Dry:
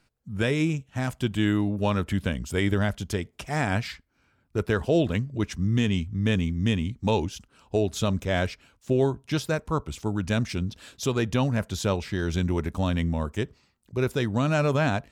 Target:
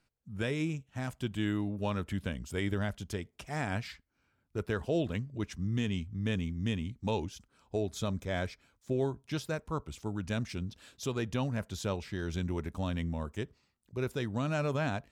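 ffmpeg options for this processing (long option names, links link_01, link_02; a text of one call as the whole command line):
ffmpeg -i in.wav -filter_complex "[0:a]asettb=1/sr,asplit=3[link_01][link_02][link_03];[link_01]atrim=end=7.334[link_04];[link_02]atrim=start=7.33:end=9.26,asetpts=PTS-STARTPTS,afade=type=in:duration=0.004:curve=qsin,afade=type=out:start_time=1.926:duration=0.004:curve=qsin,bandreject=frequency=2800:width=8[link_05];[link_03]atrim=start=9.256[link_06];[link_04][link_05]acrossfade=duration=0.004:curve1=hsin:curve2=qsin[link_07];[link_07][link_06]acrossfade=duration=0.004:curve1=qsin:curve2=hsin,volume=-8.5dB" out.wav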